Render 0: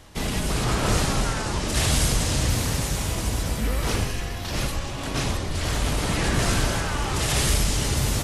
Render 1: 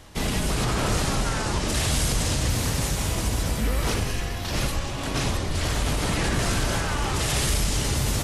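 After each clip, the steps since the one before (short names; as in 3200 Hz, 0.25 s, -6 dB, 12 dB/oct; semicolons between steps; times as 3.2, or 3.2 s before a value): limiter -16 dBFS, peak gain reduction 4 dB; gain +1 dB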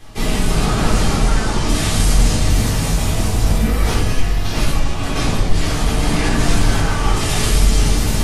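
shoebox room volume 270 m³, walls furnished, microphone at 3.8 m; gain -1.5 dB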